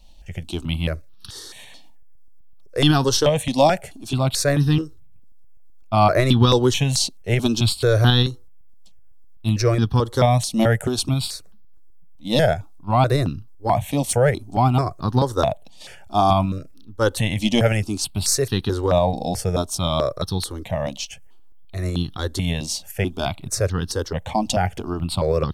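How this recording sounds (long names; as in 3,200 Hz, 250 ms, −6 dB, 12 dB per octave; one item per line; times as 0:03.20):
tremolo saw up 7.9 Hz, depth 30%
notches that jump at a steady rate 4.6 Hz 410–2,200 Hz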